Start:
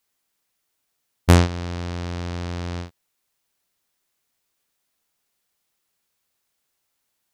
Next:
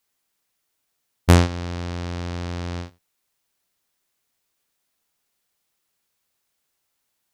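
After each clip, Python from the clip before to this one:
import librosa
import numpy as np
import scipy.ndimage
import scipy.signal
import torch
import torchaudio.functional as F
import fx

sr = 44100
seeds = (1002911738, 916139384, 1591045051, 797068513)

y = x + 10.0 ** (-23.0 / 20.0) * np.pad(x, (int(88 * sr / 1000.0), 0))[:len(x)]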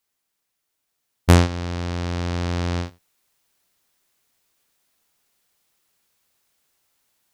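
y = fx.rider(x, sr, range_db=4, speed_s=2.0)
y = y * 10.0 ** (1.5 / 20.0)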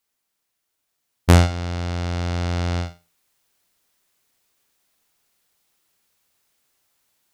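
y = fx.room_flutter(x, sr, wall_m=8.1, rt60_s=0.28)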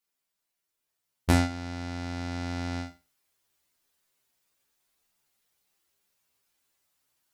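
y = fx.stiff_resonator(x, sr, f0_hz=65.0, decay_s=0.24, stiffness=0.002)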